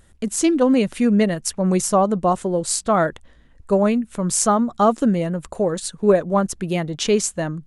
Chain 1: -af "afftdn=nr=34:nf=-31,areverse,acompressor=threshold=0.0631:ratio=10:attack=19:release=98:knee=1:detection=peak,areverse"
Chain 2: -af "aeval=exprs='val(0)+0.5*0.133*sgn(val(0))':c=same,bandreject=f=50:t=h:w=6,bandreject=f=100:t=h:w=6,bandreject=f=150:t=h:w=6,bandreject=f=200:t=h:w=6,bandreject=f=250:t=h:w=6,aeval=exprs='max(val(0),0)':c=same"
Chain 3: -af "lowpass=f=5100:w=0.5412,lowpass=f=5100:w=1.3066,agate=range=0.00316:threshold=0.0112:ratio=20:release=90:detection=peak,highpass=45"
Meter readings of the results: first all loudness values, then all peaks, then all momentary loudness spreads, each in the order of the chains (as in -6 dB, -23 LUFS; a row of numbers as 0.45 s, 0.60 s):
-26.5 LUFS, -22.0 LUFS, -20.0 LUFS; -7.0 dBFS, -1.5 dBFS, -5.0 dBFS; 4 LU, 5 LU, 7 LU